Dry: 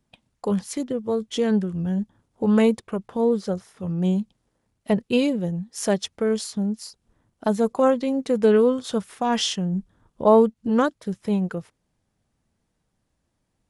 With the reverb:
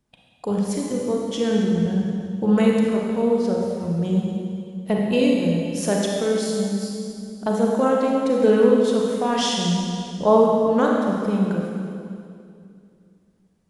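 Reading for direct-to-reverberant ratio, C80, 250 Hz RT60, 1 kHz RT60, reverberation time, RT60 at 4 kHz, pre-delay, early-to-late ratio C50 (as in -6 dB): -2.0 dB, 1.0 dB, 2.8 s, 2.3 s, 2.4 s, 2.2 s, 32 ms, -0.5 dB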